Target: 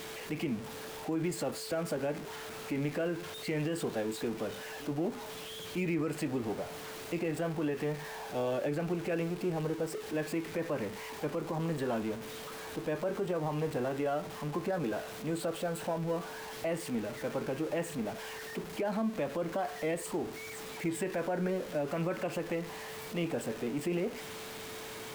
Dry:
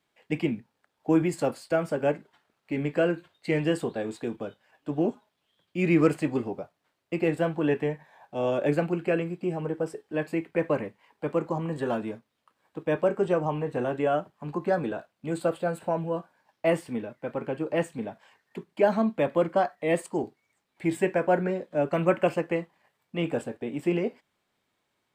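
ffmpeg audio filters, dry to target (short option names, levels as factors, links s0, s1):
-af "aeval=exprs='val(0)+0.5*0.02*sgn(val(0))':c=same,aeval=exprs='val(0)+0.00794*sin(2*PI*440*n/s)':c=same,alimiter=limit=0.0944:level=0:latency=1:release=83,volume=0.596"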